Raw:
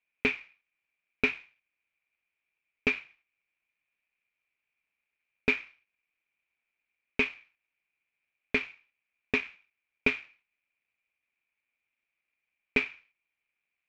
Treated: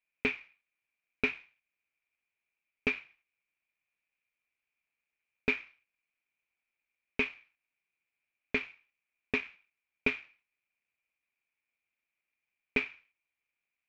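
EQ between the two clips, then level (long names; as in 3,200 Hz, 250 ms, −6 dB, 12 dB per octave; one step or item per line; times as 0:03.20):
high-shelf EQ 6,600 Hz −5.5 dB
−3.0 dB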